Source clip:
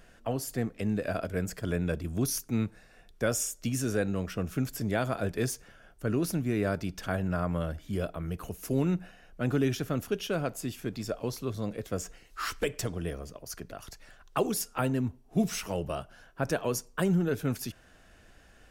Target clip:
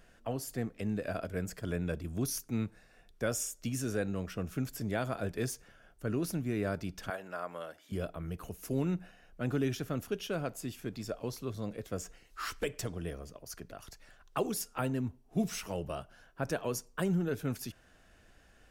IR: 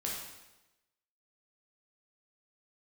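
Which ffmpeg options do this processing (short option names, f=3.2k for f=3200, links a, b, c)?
-filter_complex "[0:a]asettb=1/sr,asplit=3[a][b][c];[a]atrim=end=7.104[d];[b]atrim=start=7.1:end=7.92,asetpts=PTS-STARTPTS,afade=t=in:d=0.004:c=qsin,afade=t=out:st=0.816:d=0.004:c=qsin,highpass=490[e];[c]atrim=start=7.916[f];[d][e]acrossfade=d=0.004:c1=hsin:c2=qsin[g];[g][f]acrossfade=d=0.004:c1=qsin:c2=hsin,volume=-4.5dB"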